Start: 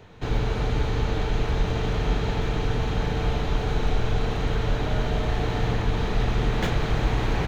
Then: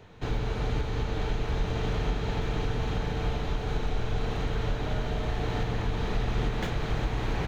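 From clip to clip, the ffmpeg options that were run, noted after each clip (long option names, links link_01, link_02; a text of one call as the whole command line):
ffmpeg -i in.wav -af "alimiter=limit=-15.5dB:level=0:latency=1:release=322,volume=-3dB" out.wav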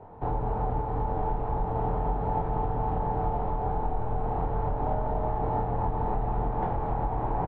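ffmpeg -i in.wav -filter_complex "[0:a]acompressor=threshold=-27dB:ratio=6,lowpass=frequency=860:width_type=q:width=4.4,asplit=2[link_01][link_02];[link_02]adelay=24,volume=-5dB[link_03];[link_01][link_03]amix=inputs=2:normalize=0" out.wav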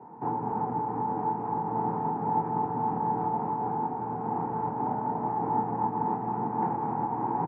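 ffmpeg -i in.wav -af "highpass=frequency=140:width=0.5412,highpass=frequency=140:width=1.3066,equalizer=frequency=150:width_type=q:width=4:gain=4,equalizer=frequency=230:width_type=q:width=4:gain=9,equalizer=frequency=330:width_type=q:width=4:gain=6,equalizer=frequency=620:width_type=q:width=4:gain=-10,equalizer=frequency=900:width_type=q:width=4:gain=9,lowpass=frequency=2300:width=0.5412,lowpass=frequency=2300:width=1.3066,volume=-2.5dB" out.wav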